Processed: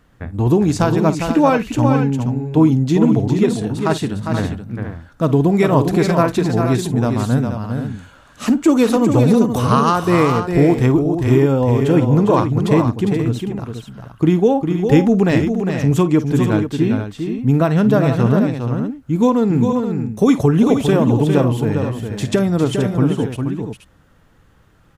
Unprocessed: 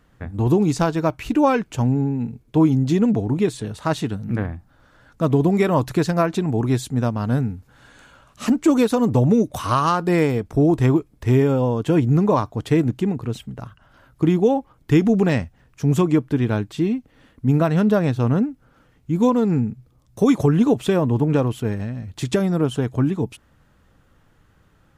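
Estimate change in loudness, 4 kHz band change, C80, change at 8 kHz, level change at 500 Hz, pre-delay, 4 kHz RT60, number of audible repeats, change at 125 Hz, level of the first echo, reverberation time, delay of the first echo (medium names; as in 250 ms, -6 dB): +4.0 dB, +4.5 dB, no reverb, +4.5 dB, +4.5 dB, no reverb, no reverb, 3, +4.0 dB, -15.5 dB, no reverb, 51 ms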